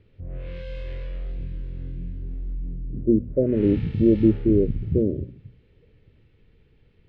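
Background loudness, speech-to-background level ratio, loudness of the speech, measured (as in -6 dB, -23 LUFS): -36.0 LUFS, 14.5 dB, -21.5 LUFS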